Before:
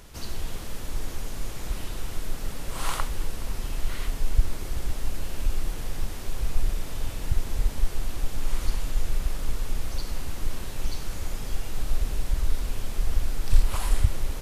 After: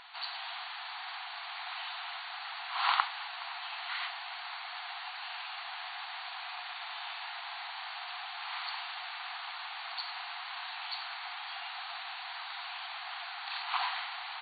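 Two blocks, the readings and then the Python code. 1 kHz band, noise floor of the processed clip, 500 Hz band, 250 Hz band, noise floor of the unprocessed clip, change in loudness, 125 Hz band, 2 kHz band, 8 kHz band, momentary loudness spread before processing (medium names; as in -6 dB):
+5.0 dB, -43 dBFS, -11.0 dB, under -40 dB, -35 dBFS, -5.0 dB, under -40 dB, +5.0 dB, under -40 dB, 8 LU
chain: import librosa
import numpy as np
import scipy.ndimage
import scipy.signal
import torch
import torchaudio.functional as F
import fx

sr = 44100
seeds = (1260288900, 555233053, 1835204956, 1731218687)

y = fx.brickwall_bandpass(x, sr, low_hz=680.0, high_hz=4600.0)
y = F.gain(torch.from_numpy(y), 5.0).numpy()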